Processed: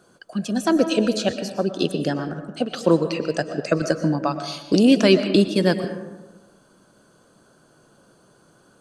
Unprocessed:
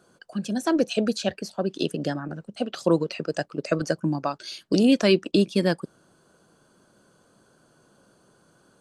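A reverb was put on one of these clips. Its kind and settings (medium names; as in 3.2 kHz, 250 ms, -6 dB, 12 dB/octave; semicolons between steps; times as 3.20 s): algorithmic reverb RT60 1.2 s, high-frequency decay 0.4×, pre-delay 80 ms, DRR 9 dB; trim +3.5 dB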